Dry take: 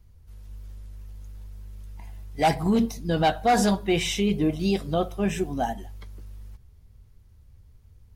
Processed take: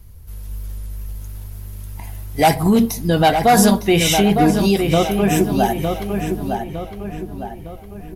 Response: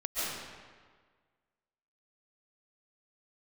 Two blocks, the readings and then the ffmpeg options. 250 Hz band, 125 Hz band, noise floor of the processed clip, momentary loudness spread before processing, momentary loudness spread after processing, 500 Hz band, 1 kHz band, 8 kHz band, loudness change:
+9.0 dB, +10.0 dB, -36 dBFS, 22 LU, 20 LU, +9.0 dB, +8.5 dB, +12.5 dB, +8.0 dB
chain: -filter_complex "[0:a]equalizer=f=12k:t=o:w=0.58:g=14.5,asplit=2[a][b];[b]acompressor=threshold=-30dB:ratio=6,volume=1.5dB[c];[a][c]amix=inputs=2:normalize=0,asplit=2[d][e];[e]adelay=908,lowpass=f=2.9k:p=1,volume=-5.5dB,asplit=2[f][g];[g]adelay=908,lowpass=f=2.9k:p=1,volume=0.46,asplit=2[h][i];[i]adelay=908,lowpass=f=2.9k:p=1,volume=0.46,asplit=2[j][k];[k]adelay=908,lowpass=f=2.9k:p=1,volume=0.46,asplit=2[l][m];[m]adelay=908,lowpass=f=2.9k:p=1,volume=0.46,asplit=2[n][o];[o]adelay=908,lowpass=f=2.9k:p=1,volume=0.46[p];[d][f][h][j][l][n][p]amix=inputs=7:normalize=0,volume=5dB"

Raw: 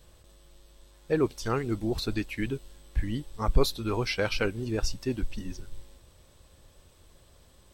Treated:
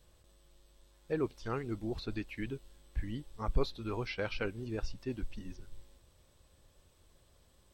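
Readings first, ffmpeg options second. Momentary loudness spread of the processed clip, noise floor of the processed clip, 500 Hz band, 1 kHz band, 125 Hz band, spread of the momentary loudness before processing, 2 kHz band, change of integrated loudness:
11 LU, -66 dBFS, -8.0 dB, -8.0 dB, -8.0 dB, 11 LU, -8.0 dB, -8.5 dB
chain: -filter_complex "[0:a]acrossover=split=4500[a][b];[b]acompressor=threshold=-58dB:ratio=4:attack=1:release=60[c];[a][c]amix=inputs=2:normalize=0,volume=-8dB"

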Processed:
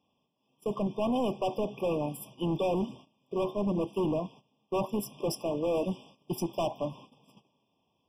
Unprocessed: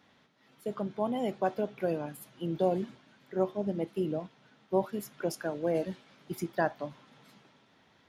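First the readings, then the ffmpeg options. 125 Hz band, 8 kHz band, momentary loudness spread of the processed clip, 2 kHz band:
+2.5 dB, +3.5 dB, 8 LU, -6.5 dB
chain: -af "volume=32.5dB,asoftclip=hard,volume=-32.5dB,agate=range=-17dB:threshold=-56dB:ratio=16:detection=peak,afftfilt=real='re*eq(mod(floor(b*sr/1024/1200),2),0)':imag='im*eq(mod(floor(b*sr/1024/1200),2),0)':win_size=1024:overlap=0.75,volume=7dB"

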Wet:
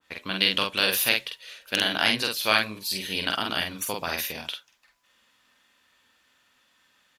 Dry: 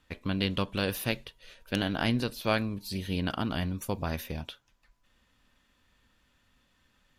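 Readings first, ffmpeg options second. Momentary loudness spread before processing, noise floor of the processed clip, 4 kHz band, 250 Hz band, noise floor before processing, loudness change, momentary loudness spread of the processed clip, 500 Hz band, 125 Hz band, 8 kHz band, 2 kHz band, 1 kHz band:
8 LU, -66 dBFS, +12.5 dB, -4.0 dB, -70 dBFS, +7.0 dB, 12 LU, +1.5 dB, -9.5 dB, +12.5 dB, +10.5 dB, +6.0 dB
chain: -filter_complex "[0:a]highpass=f=800:p=1,asplit=2[a][b];[b]adelay=47,volume=-3.5dB[c];[a][c]amix=inputs=2:normalize=0,adynamicequalizer=threshold=0.00501:dfrequency=1600:dqfactor=0.7:tfrequency=1600:tqfactor=0.7:attack=5:release=100:ratio=0.375:range=3:mode=boostabove:tftype=highshelf,volume=5.5dB"

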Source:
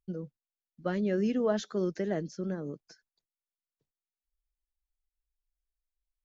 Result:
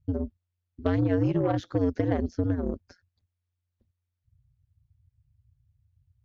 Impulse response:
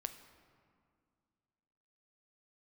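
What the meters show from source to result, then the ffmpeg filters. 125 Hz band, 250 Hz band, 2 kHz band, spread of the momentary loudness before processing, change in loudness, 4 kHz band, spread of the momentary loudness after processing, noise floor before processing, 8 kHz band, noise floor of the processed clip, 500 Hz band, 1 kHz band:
+11.0 dB, +5.0 dB, +1.5 dB, 14 LU, +4.5 dB, -2.0 dB, 9 LU, under -85 dBFS, n/a, -83 dBFS, +2.0 dB, +6.0 dB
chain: -af "aemphasis=mode=reproduction:type=riaa,acompressor=threshold=-25dB:ratio=5,aeval=exprs='val(0)*sin(2*PI*89*n/s)':c=same,adynamicsmooth=sensitivity=3.5:basefreq=4.2k,aeval=exprs='0.133*(cos(1*acos(clip(val(0)/0.133,-1,1)))-cos(1*PI/2))+0.00422*(cos(7*acos(clip(val(0)/0.133,-1,1)))-cos(7*PI/2))':c=same,crystalizer=i=5:c=0,volume=6dB"

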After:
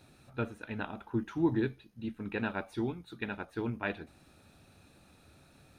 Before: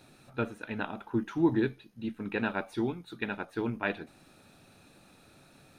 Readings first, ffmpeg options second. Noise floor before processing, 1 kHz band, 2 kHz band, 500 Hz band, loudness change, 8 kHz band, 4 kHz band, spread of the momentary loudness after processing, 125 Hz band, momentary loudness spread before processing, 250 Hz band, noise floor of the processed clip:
-60 dBFS, -3.5 dB, -3.5 dB, -3.0 dB, -3.0 dB, n/a, -3.5 dB, 12 LU, 0.0 dB, 12 LU, -3.0 dB, -62 dBFS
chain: -af "equalizer=f=70:t=o:w=1:g=12,volume=-3.5dB"

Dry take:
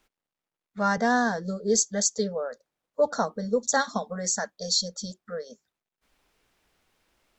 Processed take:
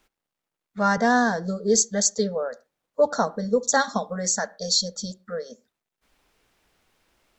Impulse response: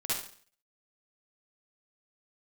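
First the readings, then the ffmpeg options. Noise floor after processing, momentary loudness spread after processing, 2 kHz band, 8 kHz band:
under -85 dBFS, 15 LU, +3.0 dB, +3.0 dB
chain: -filter_complex "[0:a]asplit=2[a][b];[1:a]atrim=start_sample=2205,afade=t=out:st=0.19:d=0.01,atrim=end_sample=8820,lowpass=2.1k[c];[b][c]afir=irnorm=-1:irlink=0,volume=-24dB[d];[a][d]amix=inputs=2:normalize=0,volume=3dB"

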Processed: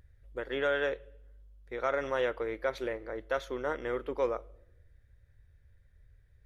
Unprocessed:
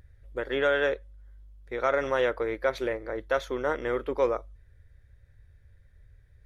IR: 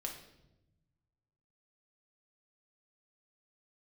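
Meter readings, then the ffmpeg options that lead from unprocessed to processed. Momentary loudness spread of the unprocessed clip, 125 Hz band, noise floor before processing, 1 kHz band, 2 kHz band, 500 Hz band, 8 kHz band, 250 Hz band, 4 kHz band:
10 LU, -5.5 dB, -58 dBFS, -5.0 dB, -5.0 dB, -5.0 dB, n/a, -5.0 dB, -5.0 dB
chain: -filter_complex "[0:a]asplit=2[a][b];[b]equalizer=f=2.9k:t=o:w=0.22:g=12[c];[1:a]atrim=start_sample=2205[d];[c][d]afir=irnorm=-1:irlink=0,volume=-16dB[e];[a][e]amix=inputs=2:normalize=0,volume=-6dB"

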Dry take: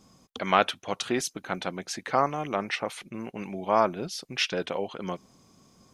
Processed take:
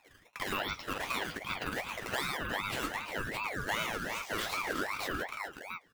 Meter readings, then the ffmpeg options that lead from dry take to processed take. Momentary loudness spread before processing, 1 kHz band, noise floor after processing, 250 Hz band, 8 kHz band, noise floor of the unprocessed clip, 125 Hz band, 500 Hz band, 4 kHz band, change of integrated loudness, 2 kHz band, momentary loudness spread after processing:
13 LU, -8.5 dB, -62 dBFS, -8.5 dB, -6.0 dB, -61 dBFS, -6.0 dB, -11.0 dB, -4.5 dB, -6.5 dB, 0.0 dB, 5 LU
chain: -filter_complex "[0:a]afftfilt=real='real(if(between(b,1,1008),(2*floor((b-1)/48)+1)*48-b,b),0)':imag='imag(if(between(b,1,1008),(2*floor((b-1)/48)+1)*48-b,b),0)*if(between(b,1,1008),-1,1)':win_size=2048:overlap=0.75,highpass=180,lowpass=2.4k,crystalizer=i=4:c=0,agate=range=-41dB:threshold=-54dB:ratio=16:detection=peak,acrusher=samples=8:mix=1:aa=0.000001:lfo=1:lforange=12.8:lforate=1.1,flanger=delay=9.5:depth=2.8:regen=34:speed=0.89:shape=sinusoidal,asplit=2[a][b];[b]aecho=0:1:41|42|52|109|357|616:0.316|0.141|0.266|0.631|0.211|0.447[c];[a][c]amix=inputs=2:normalize=0,acompressor=threshold=-31dB:ratio=4,volume=25dB,asoftclip=hard,volume=-25dB,acompressor=mode=upward:threshold=-39dB:ratio=2.5,adynamicequalizer=threshold=0.00282:dfrequency=530:dqfactor=1.9:tfrequency=530:tqfactor=1.9:attack=5:release=100:ratio=0.375:range=3:mode=boostabove:tftype=bell,aeval=exprs='val(0)*sin(2*PI*1300*n/s+1300*0.4/2.6*sin(2*PI*2.6*n/s))':c=same"

